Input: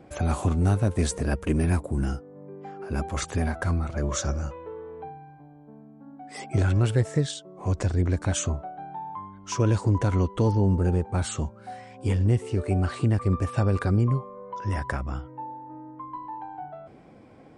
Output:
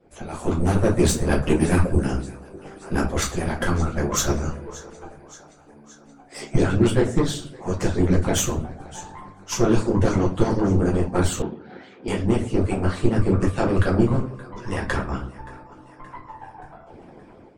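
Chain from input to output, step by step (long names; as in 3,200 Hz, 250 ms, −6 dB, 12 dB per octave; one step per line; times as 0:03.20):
on a send: feedback echo with a high-pass in the loop 574 ms, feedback 60%, high-pass 400 Hz, level −17 dB
on the sum: automatic gain control gain up to 10 dB
flanger 1.6 Hz, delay 1.6 ms, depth 5.2 ms, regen −41%
harmonic generator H 6 −20 dB, 7 −30 dB, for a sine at −5.5 dBFS
rectangular room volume 42 cubic metres, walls mixed, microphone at 1 metre
harmonic and percussive parts rebalanced harmonic −17 dB
0:11.42–0:12.08: loudspeaker in its box 230–3,700 Hz, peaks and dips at 610 Hz −5 dB, 1,100 Hz −8 dB, 2,700 Hz −4 dB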